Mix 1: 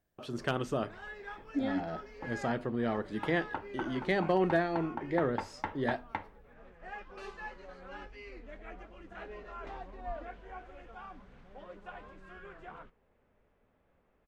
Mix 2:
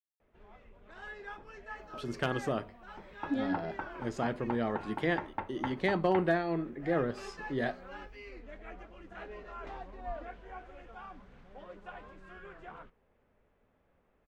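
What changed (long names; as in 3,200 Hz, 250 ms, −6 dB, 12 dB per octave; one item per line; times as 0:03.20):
speech: entry +1.75 s
second sound: add low-pass filter 3,100 Hz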